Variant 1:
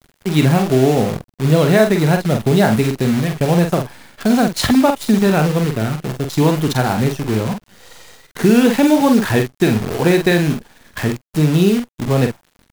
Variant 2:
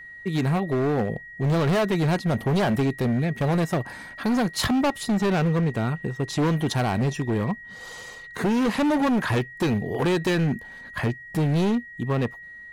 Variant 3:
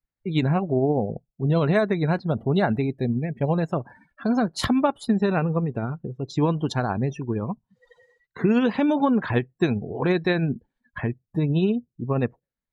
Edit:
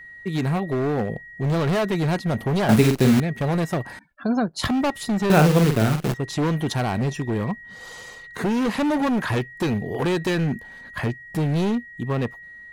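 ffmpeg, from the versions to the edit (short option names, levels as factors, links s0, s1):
-filter_complex "[0:a]asplit=2[s0][s1];[1:a]asplit=4[s2][s3][s4][s5];[s2]atrim=end=2.692[s6];[s0]atrim=start=2.688:end=3.202[s7];[s3]atrim=start=3.198:end=3.992[s8];[2:a]atrim=start=3.988:end=4.652[s9];[s4]atrim=start=4.648:end=5.302[s10];[s1]atrim=start=5.298:end=6.142[s11];[s5]atrim=start=6.138[s12];[s6][s7]acrossfade=d=0.004:c1=hsin:c2=hsin[s13];[s13][s8]acrossfade=d=0.004:c1=hsin:c2=hsin[s14];[s14][s9]acrossfade=d=0.004:c1=hsin:c2=hsin[s15];[s15][s10]acrossfade=d=0.004:c1=hsin:c2=hsin[s16];[s16][s11]acrossfade=d=0.004:c1=hsin:c2=hsin[s17];[s17][s12]acrossfade=d=0.004:c1=hsin:c2=hsin"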